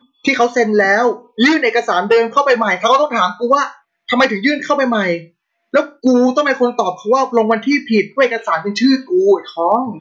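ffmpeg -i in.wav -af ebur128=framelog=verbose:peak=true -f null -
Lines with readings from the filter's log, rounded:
Integrated loudness:
  I:         -14.6 LUFS
  Threshold: -24.7 LUFS
Loudness range:
  LRA:         2.3 LU
  Threshold: -34.9 LUFS
  LRA low:   -15.9 LUFS
  LRA high:  -13.5 LUFS
True peak:
  Peak:       -2.7 dBFS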